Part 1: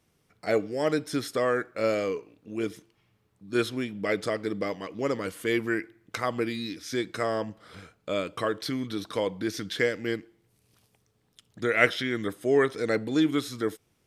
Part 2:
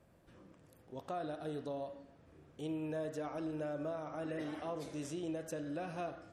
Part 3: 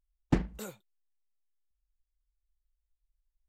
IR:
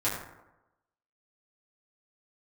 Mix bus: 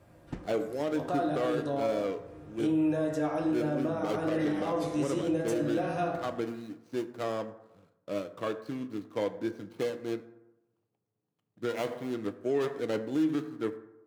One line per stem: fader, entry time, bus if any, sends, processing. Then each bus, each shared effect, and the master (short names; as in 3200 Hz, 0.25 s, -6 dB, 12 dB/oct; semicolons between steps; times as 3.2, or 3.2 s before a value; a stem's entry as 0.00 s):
+0.5 dB, 0.00 s, send -16.5 dB, median filter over 25 samples; HPF 120 Hz 24 dB/oct; upward expander 1.5:1, over -46 dBFS
+2.5 dB, 0.00 s, send -4.5 dB, dry
-8.0 dB, 0.00 s, no send, auto duck -9 dB, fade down 0.20 s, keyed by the first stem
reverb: on, RT60 0.95 s, pre-delay 5 ms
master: limiter -20.5 dBFS, peak gain reduction 10 dB